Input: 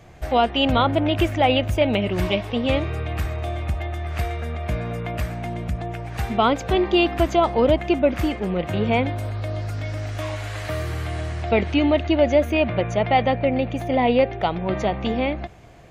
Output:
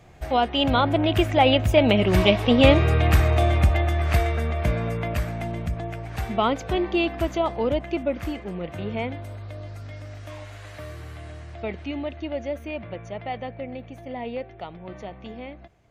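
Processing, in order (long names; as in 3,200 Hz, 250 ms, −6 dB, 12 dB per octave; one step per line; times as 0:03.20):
source passing by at 0:03.22, 8 m/s, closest 6.9 metres
level +8 dB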